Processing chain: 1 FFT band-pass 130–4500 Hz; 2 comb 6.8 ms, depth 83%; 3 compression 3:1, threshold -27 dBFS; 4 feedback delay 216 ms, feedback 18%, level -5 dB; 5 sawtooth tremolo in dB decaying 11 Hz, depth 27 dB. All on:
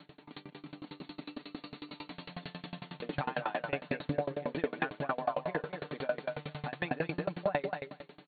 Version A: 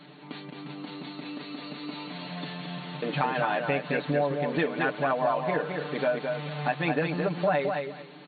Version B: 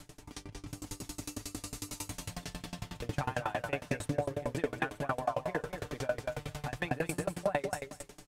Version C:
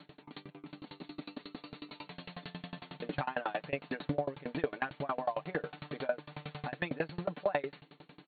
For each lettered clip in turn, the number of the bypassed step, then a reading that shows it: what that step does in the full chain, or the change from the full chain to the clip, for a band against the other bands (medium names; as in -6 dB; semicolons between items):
5, crest factor change -4.0 dB; 1, 125 Hz band +3.5 dB; 4, momentary loudness spread change +1 LU